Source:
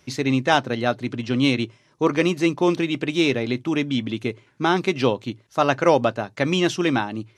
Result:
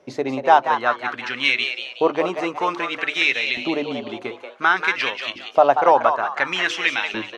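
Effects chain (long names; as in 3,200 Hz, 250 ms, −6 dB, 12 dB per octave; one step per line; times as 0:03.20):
high-shelf EQ 5,100 Hz +9.5 dB
mains-hum notches 50/100/150/200/250/300/350 Hz
in parallel at +3 dB: downward compressor, threshold −27 dBFS, peak gain reduction 15 dB
on the sum: auto-filter band-pass saw up 0.56 Hz 530–2,800 Hz
echo with shifted repeats 185 ms, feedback 39%, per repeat +130 Hz, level −7.5 dB
level +6 dB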